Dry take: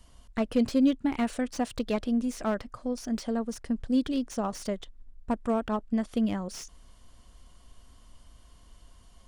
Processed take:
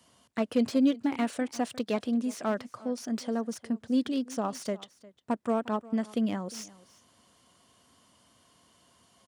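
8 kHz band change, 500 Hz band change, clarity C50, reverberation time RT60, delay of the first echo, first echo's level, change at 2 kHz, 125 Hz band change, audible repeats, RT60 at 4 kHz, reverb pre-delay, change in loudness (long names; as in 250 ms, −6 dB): 0.0 dB, 0.0 dB, no reverb audible, no reverb audible, 354 ms, −20.5 dB, 0.0 dB, can't be measured, 1, no reverb audible, no reverb audible, −1.0 dB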